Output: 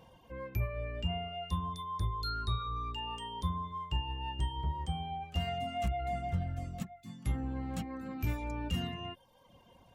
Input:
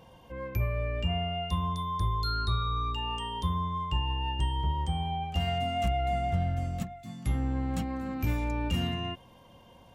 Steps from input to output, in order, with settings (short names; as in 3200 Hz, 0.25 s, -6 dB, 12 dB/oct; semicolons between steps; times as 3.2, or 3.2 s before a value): reverb removal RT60 0.77 s; gain -3.5 dB